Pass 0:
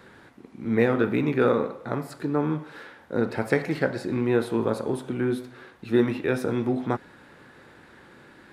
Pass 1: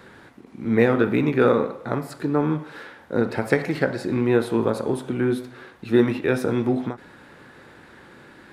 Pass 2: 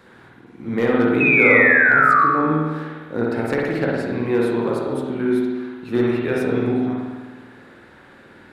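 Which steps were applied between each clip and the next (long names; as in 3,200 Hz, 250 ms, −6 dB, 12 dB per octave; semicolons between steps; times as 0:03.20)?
every ending faded ahead of time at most 220 dB per second; level +3.5 dB
gain into a clipping stage and back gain 8.5 dB; sound drawn into the spectrogram fall, 0:01.20–0:02.25, 1,100–2,600 Hz −15 dBFS; spring reverb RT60 1.4 s, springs 51 ms, chirp 20 ms, DRR −2.5 dB; level −3.5 dB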